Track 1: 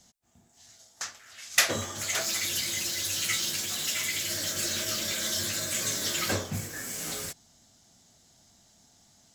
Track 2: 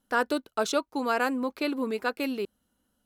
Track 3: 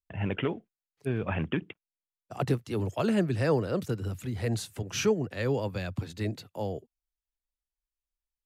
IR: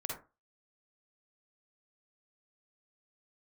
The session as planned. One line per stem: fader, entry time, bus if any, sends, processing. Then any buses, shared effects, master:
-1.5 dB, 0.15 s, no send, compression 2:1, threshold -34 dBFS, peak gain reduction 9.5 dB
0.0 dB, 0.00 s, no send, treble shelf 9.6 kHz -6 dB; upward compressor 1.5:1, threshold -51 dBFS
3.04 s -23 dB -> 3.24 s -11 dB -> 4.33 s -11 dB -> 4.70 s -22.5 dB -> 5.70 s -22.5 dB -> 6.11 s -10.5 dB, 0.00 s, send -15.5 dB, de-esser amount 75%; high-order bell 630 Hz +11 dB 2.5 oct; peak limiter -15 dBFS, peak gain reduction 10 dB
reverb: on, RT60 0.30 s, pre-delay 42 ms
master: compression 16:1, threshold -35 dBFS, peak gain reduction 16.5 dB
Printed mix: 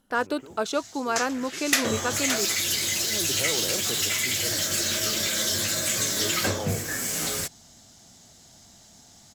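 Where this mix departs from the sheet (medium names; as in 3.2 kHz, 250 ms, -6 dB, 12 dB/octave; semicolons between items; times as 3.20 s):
stem 1 -1.5 dB -> +8.5 dB; master: missing compression 16:1, threshold -35 dBFS, peak gain reduction 16.5 dB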